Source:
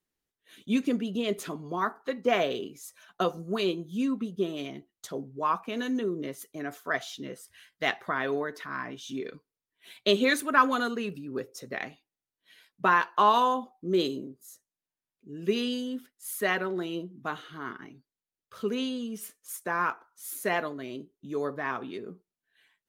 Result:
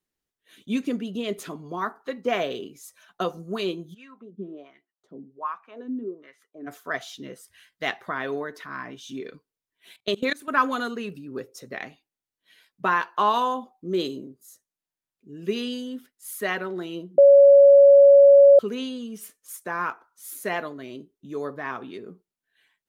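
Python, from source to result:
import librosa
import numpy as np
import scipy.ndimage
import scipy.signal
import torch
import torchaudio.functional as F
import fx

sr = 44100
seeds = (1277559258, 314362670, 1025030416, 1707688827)

y = fx.wah_lfo(x, sr, hz=1.3, low_hz=220.0, high_hz=1900.0, q=2.5, at=(3.93, 6.66), fade=0.02)
y = fx.level_steps(y, sr, step_db=23, at=(9.96, 10.48))
y = fx.edit(y, sr, fx.bleep(start_s=17.18, length_s=1.41, hz=561.0, db=-8.5), tone=tone)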